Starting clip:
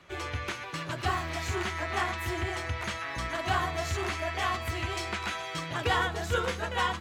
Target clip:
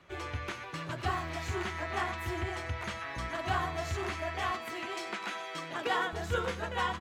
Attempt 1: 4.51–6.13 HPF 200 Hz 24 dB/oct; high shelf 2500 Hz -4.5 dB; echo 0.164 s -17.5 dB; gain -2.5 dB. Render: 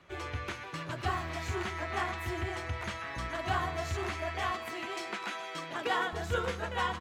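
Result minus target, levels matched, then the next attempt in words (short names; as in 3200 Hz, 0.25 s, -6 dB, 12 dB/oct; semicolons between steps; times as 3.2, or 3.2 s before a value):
echo 72 ms late
4.51–6.13 HPF 200 Hz 24 dB/oct; high shelf 2500 Hz -4.5 dB; echo 92 ms -17.5 dB; gain -2.5 dB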